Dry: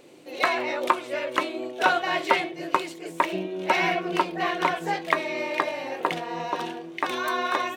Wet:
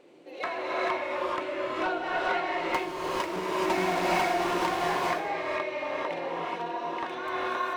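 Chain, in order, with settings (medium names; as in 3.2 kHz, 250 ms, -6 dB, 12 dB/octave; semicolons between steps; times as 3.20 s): 2.69–4.86 s: square wave that keeps the level; low-pass 1.9 kHz 6 dB/octave; bass shelf 160 Hz -9.5 dB; hum notches 50/100/150/200/250 Hz; in parallel at -1 dB: compression, threshold -40 dBFS, peak gain reduction 23 dB; on the sum: saturation -14 dBFS, distortion -14 dB; gated-style reverb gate 460 ms rising, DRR -4.5 dB; trim -8 dB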